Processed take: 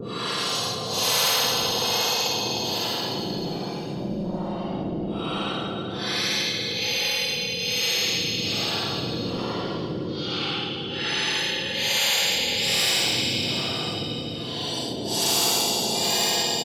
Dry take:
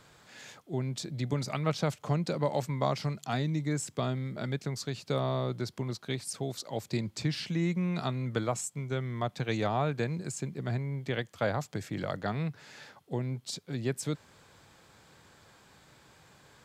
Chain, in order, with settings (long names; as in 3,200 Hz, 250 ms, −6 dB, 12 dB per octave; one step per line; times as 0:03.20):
frequency axis turned over on the octave scale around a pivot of 1,300 Hz
treble cut that deepens with the level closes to 2,900 Hz, closed at −30.5 dBFS
flat-topped bell 3,900 Hz +12 dB 1.1 octaves
comb filter 5.9 ms, depth 42%
in parallel at −4.5 dB: soft clipping −24 dBFS, distortion −15 dB
on the sum: extreme stretch with random phases 17×, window 0.05 s, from 0:06.03
two-band tremolo in antiphase 1.2 Hz, depth 100%, crossover 480 Hz
repeating echo 305 ms, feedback 49%, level −11 dB
on a send at −13 dB: convolution reverb RT60 1.4 s, pre-delay 105 ms
on the sum: every bin compressed towards the loudest bin 4 to 1
level +3.5 dB